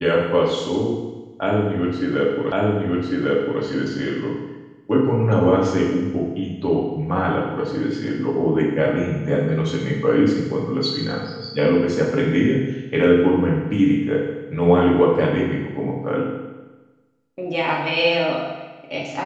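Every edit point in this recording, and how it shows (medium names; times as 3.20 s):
2.52 s: repeat of the last 1.1 s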